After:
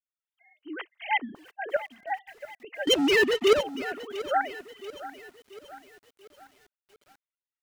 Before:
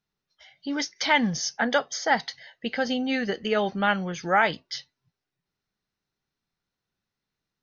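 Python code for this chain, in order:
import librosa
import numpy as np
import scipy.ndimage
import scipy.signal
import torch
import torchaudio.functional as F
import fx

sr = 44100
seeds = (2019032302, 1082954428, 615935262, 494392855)

y = fx.sine_speech(x, sr)
y = fx.notch(y, sr, hz=1700.0, q=18.0)
y = fx.leveller(y, sr, passes=5, at=(2.87, 3.61))
y = fx.tremolo_shape(y, sr, shape='saw_up', hz=3.4, depth_pct=75)
y = fx.echo_crushed(y, sr, ms=686, feedback_pct=55, bits=7, wet_db=-14.5)
y = F.gain(torch.from_numpy(y), -4.0).numpy()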